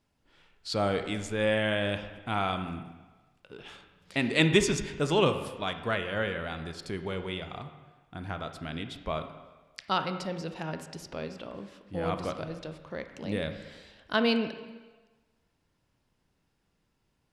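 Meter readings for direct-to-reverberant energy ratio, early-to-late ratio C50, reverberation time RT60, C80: 8.0 dB, 9.0 dB, 1.3 s, 11.0 dB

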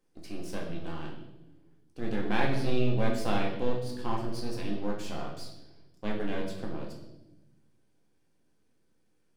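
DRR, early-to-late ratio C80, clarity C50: -2.0 dB, 8.0 dB, 5.0 dB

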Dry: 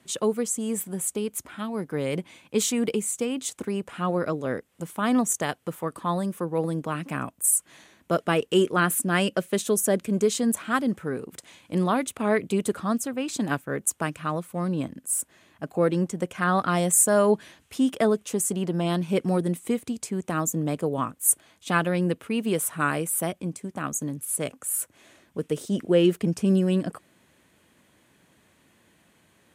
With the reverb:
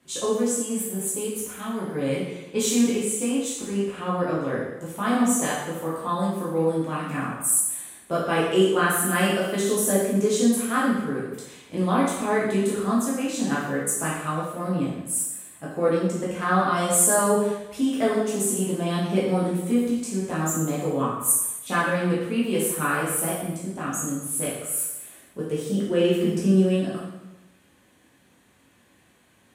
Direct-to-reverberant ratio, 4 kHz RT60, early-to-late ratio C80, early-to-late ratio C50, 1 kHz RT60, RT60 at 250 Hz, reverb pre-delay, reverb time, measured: -7.0 dB, 0.90 s, 4.0 dB, 1.0 dB, 1.0 s, 1.0 s, 5 ms, 1.0 s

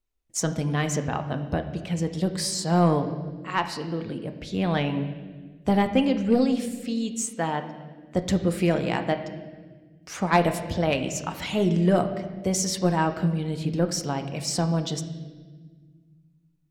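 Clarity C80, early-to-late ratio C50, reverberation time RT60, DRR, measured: 11.5 dB, 10.0 dB, 1.5 s, 7.0 dB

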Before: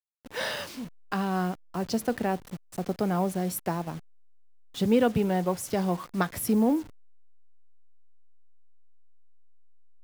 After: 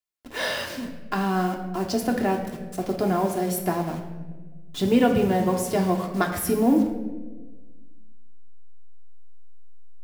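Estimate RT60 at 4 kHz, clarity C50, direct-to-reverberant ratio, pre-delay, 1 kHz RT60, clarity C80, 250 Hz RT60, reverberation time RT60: 0.80 s, 7.0 dB, 1.0 dB, 3 ms, 1.0 s, 9.0 dB, 1.9 s, 1.3 s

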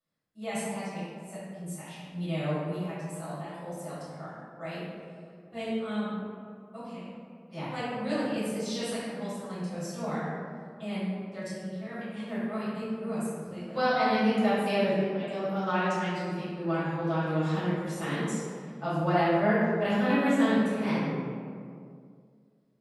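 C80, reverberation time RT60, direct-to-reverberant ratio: 0.0 dB, 2.2 s, -13.0 dB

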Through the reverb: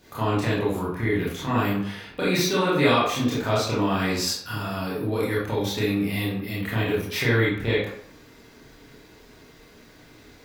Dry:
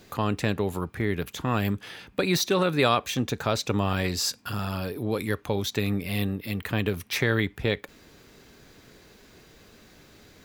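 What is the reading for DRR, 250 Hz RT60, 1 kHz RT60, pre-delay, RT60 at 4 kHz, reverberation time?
-9.0 dB, 0.55 s, 0.65 s, 22 ms, 0.40 s, 0.65 s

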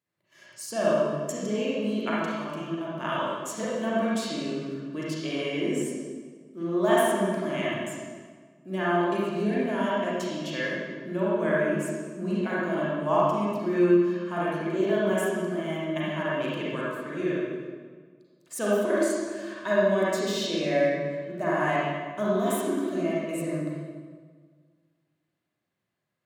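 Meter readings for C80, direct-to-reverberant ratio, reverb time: -0.5 dB, -7.5 dB, 1.6 s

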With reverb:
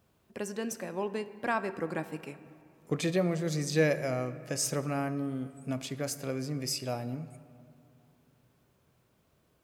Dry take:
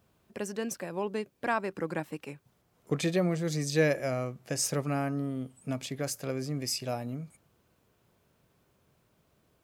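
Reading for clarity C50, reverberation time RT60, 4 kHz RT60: 13.0 dB, 2.5 s, 1.3 s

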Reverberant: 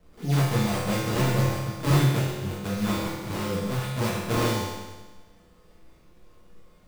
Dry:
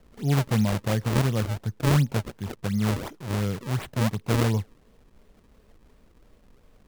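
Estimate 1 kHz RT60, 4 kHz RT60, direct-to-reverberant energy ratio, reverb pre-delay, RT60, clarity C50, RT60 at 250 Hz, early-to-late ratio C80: 1.3 s, 1.3 s, -8.0 dB, 6 ms, 1.3 s, -0.5 dB, 1.3 s, 2.0 dB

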